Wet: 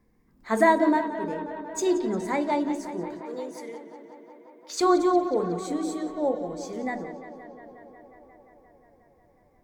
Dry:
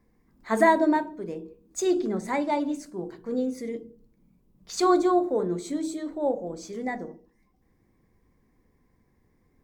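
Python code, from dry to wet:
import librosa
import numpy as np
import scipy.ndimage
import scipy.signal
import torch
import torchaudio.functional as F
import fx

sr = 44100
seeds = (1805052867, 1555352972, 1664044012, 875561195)

y = fx.highpass(x, sr, hz=600.0, slope=12, at=(3.2, 4.81))
y = fx.echo_tape(y, sr, ms=178, feedback_pct=85, wet_db=-12, lp_hz=4900.0, drive_db=7.0, wow_cents=38)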